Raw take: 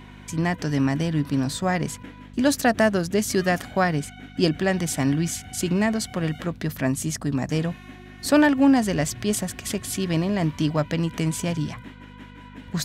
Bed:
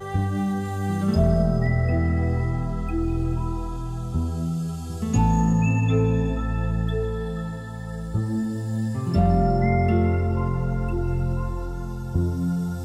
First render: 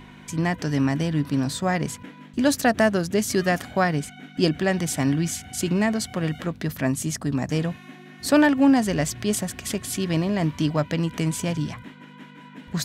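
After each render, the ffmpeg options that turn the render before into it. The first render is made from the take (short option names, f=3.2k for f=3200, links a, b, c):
-af "bandreject=f=50:t=h:w=4,bandreject=f=100:t=h:w=4"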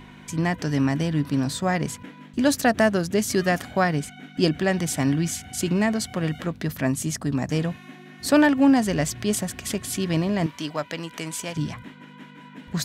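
-filter_complex "[0:a]asettb=1/sr,asplit=3[a][b][c];[a]atrim=end=10.464[d];[b]atrim=start=10.46:end=11.56,asetpts=PTS-STARTPTS,afade=t=in:d=0.004:c=qsin,afade=t=out:st=1.096:d=0.004:c=qsin,highpass=f=660:p=1[e];[c]atrim=start=11.556[f];[d][e]acrossfade=d=0.004:c1=hsin:c2=qsin[g];[g][f]acrossfade=d=0.004:c1=qsin:c2=hsin"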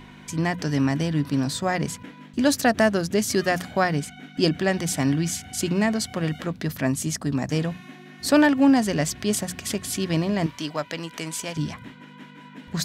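-af "equalizer=f=4.9k:t=o:w=0.77:g=2.5,bandreject=f=60:t=h:w=6,bandreject=f=120:t=h:w=6,bandreject=f=180:t=h:w=6"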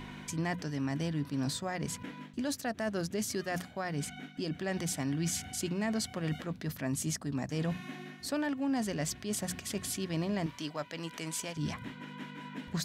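-af "areverse,acompressor=threshold=-28dB:ratio=10,areverse,alimiter=level_in=0.5dB:limit=-24dB:level=0:latency=1:release=359,volume=-0.5dB"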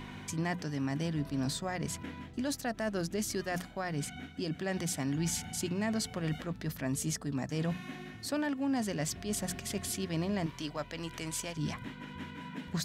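-filter_complex "[1:a]volume=-29dB[a];[0:a][a]amix=inputs=2:normalize=0"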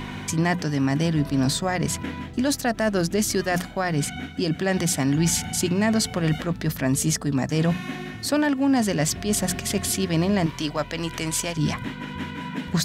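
-af "volume=11.5dB"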